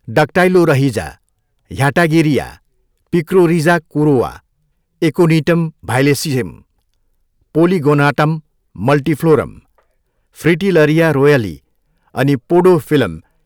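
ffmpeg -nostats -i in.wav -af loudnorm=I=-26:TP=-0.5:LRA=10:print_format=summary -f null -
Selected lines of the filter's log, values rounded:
Input Integrated:    -13.5 LUFS
Input True Peak:      -2.1 dBTP
Input LRA:             2.1 LU
Input Threshold:     -24.8 LUFS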